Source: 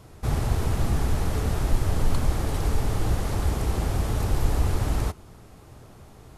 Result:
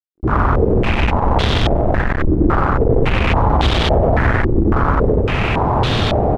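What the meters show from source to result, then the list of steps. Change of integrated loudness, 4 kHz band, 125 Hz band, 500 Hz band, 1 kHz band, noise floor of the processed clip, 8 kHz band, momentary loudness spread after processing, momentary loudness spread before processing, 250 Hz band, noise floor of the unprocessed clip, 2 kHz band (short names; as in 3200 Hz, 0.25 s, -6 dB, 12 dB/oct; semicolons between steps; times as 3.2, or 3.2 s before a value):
+11.0 dB, +16.0 dB, +9.0 dB, +17.0 dB, +17.0 dB, -19 dBFS, n/a, 2 LU, 2 LU, +14.5 dB, -48 dBFS, +18.0 dB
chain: opening faded in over 1.19 s; notches 50/100 Hz; compressor, threshold -34 dBFS, peak gain reduction 18.5 dB; fuzz box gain 52 dB, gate -56 dBFS; on a send: loudspeakers at several distances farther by 32 m -1 dB, 73 m -9 dB; on the sum: stepped low-pass 3.6 Hz 340–3500 Hz; gain -3 dB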